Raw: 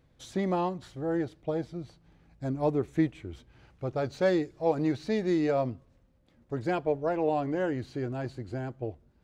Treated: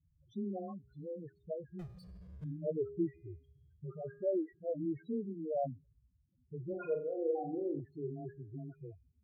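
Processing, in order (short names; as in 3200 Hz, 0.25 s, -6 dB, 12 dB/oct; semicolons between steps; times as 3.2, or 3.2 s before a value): notch 830 Hz, Q 5.3; frequency shift +16 Hz; dispersion highs, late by 0.107 s, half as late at 1200 Hz; loudest bins only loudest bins 4; 1.79–2.44 power-law curve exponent 0.5; resonator 410 Hz, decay 0.81 s, mix 70%; harmonic-percussive split percussive -3 dB; 6.68–7.8 flutter echo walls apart 7.2 m, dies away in 0.46 s; cascading flanger falling 0.24 Hz; gain +8.5 dB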